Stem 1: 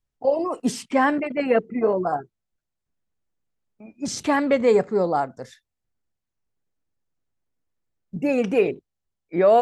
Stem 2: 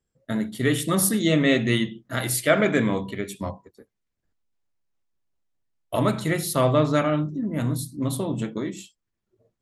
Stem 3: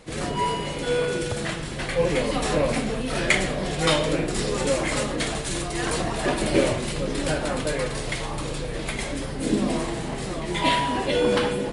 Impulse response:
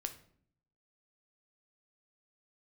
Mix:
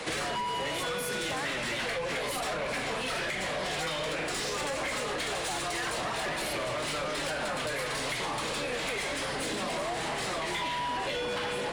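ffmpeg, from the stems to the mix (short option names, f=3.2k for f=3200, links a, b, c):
-filter_complex "[0:a]acompressor=threshold=-19dB:ratio=6,adelay=350,volume=-8.5dB[a];[1:a]volume=17dB,asoftclip=hard,volume=-17dB,volume=-7dB[b];[2:a]acrossover=split=230[c][d];[d]acompressor=threshold=-23dB:ratio=6[e];[c][e]amix=inputs=2:normalize=0,volume=-3dB,asplit=2[f][g];[g]volume=-5dB[h];[3:a]atrim=start_sample=2205[i];[h][i]afir=irnorm=-1:irlink=0[j];[a][b][f][j]amix=inputs=4:normalize=0,acrossover=split=140|550[k][l][m];[k]acompressor=threshold=-36dB:ratio=4[n];[l]acompressor=threshold=-41dB:ratio=4[o];[m]acompressor=threshold=-33dB:ratio=4[p];[n][o][p]amix=inputs=3:normalize=0,asplit=2[q][r];[r]highpass=f=720:p=1,volume=22dB,asoftclip=type=tanh:threshold=-15dB[s];[q][s]amix=inputs=2:normalize=0,lowpass=f=4.9k:p=1,volume=-6dB,acompressor=threshold=-31dB:ratio=6"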